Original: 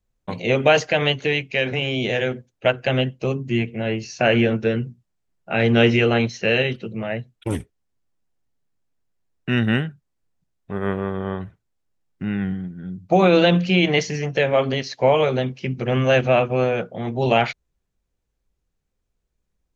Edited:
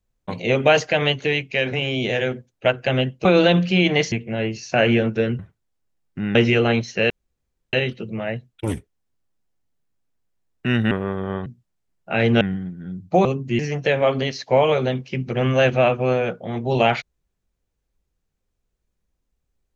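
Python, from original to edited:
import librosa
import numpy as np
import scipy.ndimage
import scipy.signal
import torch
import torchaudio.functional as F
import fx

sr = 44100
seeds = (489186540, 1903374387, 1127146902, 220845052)

y = fx.edit(x, sr, fx.swap(start_s=3.25, length_s=0.34, other_s=13.23, other_length_s=0.87),
    fx.swap(start_s=4.86, length_s=0.95, other_s=11.43, other_length_s=0.96),
    fx.insert_room_tone(at_s=6.56, length_s=0.63),
    fx.cut(start_s=9.74, length_s=1.14), tone=tone)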